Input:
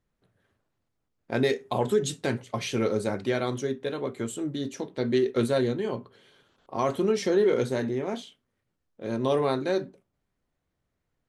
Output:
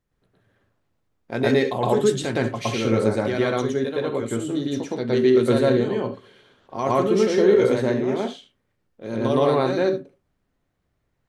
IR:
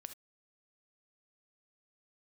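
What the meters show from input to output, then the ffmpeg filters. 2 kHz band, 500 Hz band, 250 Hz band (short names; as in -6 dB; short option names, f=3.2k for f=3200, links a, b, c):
+5.5 dB, +6.5 dB, +6.5 dB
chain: -filter_complex "[0:a]asplit=2[a][b];[1:a]atrim=start_sample=2205,highshelf=f=5.9k:g=-11.5,adelay=115[c];[b][c]afir=irnorm=-1:irlink=0,volume=10.5dB[d];[a][d]amix=inputs=2:normalize=0"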